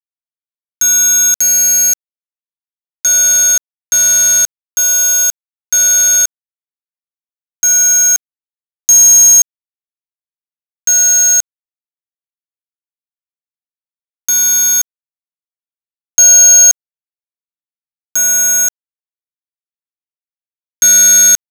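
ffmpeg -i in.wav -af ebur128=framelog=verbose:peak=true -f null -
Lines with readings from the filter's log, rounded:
Integrated loudness:
  I:          -7.2 LUFS
  Threshold: -17.4 LUFS
Loudness range:
  LRA:         7.2 LU
  Threshold: -30.2 LUFS
  LRA low:   -15.3 LUFS
  LRA high:   -8.1 LUFS
True peak:
  Peak:       -0.0 dBFS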